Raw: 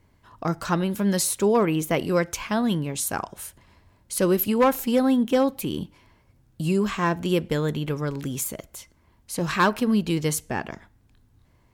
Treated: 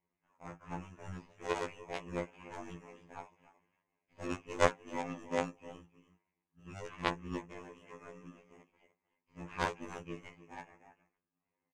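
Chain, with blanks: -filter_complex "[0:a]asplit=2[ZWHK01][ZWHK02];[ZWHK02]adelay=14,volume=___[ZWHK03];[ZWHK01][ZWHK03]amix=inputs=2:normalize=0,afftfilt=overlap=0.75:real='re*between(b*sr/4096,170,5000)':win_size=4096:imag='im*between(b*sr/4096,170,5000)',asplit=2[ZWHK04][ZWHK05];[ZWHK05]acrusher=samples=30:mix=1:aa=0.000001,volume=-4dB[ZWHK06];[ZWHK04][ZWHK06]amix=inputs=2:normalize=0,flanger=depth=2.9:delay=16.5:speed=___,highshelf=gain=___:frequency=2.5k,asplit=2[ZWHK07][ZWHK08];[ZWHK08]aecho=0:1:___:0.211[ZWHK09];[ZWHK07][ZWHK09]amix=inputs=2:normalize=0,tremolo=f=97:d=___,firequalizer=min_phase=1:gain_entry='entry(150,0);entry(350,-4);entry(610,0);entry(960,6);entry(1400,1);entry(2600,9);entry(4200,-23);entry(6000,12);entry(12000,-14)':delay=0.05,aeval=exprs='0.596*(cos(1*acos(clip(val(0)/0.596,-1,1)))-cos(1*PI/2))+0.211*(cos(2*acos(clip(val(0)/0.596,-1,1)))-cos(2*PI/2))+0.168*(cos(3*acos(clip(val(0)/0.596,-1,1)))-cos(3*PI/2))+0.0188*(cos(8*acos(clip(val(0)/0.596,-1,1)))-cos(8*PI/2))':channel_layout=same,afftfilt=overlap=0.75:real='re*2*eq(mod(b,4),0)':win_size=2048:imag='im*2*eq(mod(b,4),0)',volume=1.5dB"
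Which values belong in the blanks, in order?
-7dB, 0.81, -8.5, 305, 0.947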